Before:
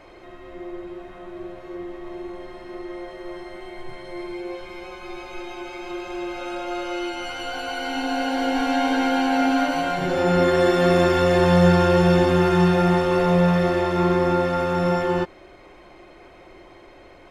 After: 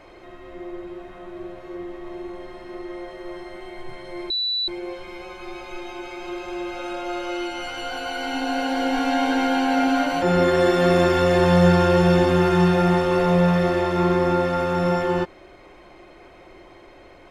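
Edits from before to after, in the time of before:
4.30 s: add tone 3.96 kHz -21 dBFS 0.38 s
9.84–10.22 s: delete

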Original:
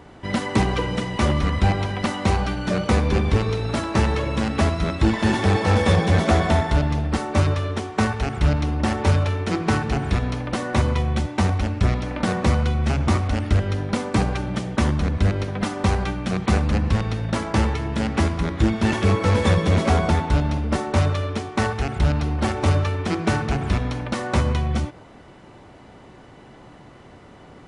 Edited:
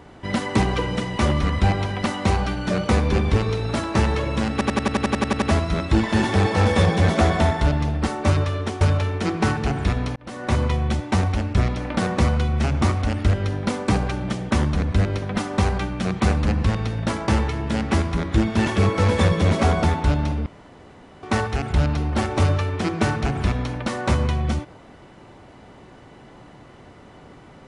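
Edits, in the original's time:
4.52 s: stutter 0.09 s, 11 plays
7.91–9.07 s: delete
10.42–10.85 s: fade in linear
20.72–21.49 s: room tone

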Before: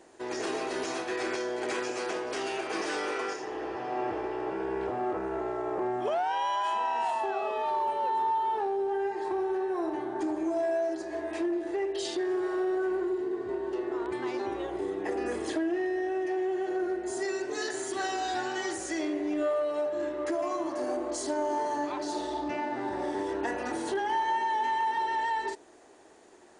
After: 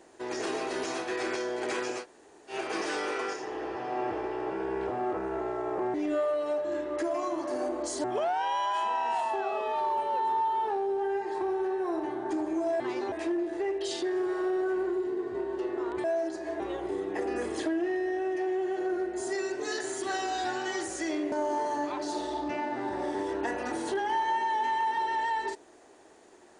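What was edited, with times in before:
2.01–2.52 s: room tone, crossfade 0.10 s
10.70–11.26 s: swap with 14.18–14.50 s
19.22–21.32 s: move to 5.94 s

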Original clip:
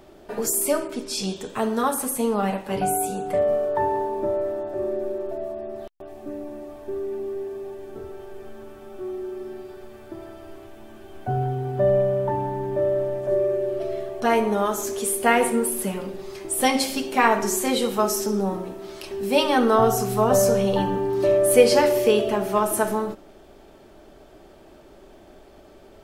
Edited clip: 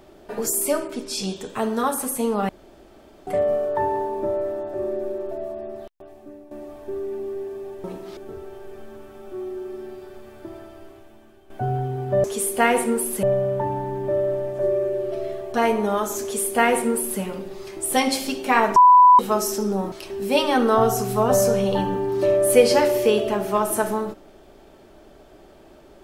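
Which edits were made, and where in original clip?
2.49–3.27 s: room tone
5.67–6.51 s: fade out, to -13 dB
10.24–11.17 s: fade out, to -12.5 dB
14.90–15.89 s: copy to 11.91 s
17.44–17.87 s: bleep 994 Hz -7.5 dBFS
18.60–18.93 s: move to 7.84 s

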